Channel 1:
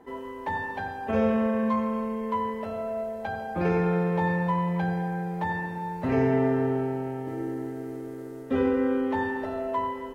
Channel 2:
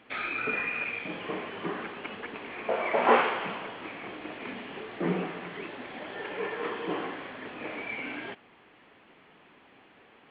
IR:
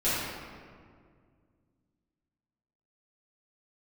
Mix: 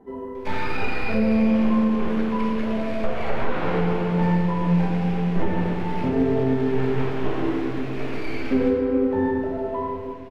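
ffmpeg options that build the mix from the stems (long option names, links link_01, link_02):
-filter_complex "[0:a]flanger=delay=8.7:depth=8:regen=56:speed=1.1:shape=triangular,tiltshelf=frequency=1100:gain=6,volume=-3.5dB,asplit=2[link_01][link_02];[link_02]volume=-11.5dB[link_03];[1:a]aeval=exprs='max(val(0),0)':channel_layout=same,adelay=350,volume=-1.5dB,asplit=2[link_04][link_05];[link_05]volume=-5dB[link_06];[2:a]atrim=start_sample=2205[link_07];[link_03][link_06]amix=inputs=2:normalize=0[link_08];[link_08][link_07]afir=irnorm=-1:irlink=0[link_09];[link_01][link_04][link_09]amix=inputs=3:normalize=0,acrossover=split=3600[link_10][link_11];[link_11]acompressor=threshold=-49dB:ratio=4:attack=1:release=60[link_12];[link_10][link_12]amix=inputs=2:normalize=0,lowshelf=frequency=440:gain=5,alimiter=limit=-11dB:level=0:latency=1:release=495"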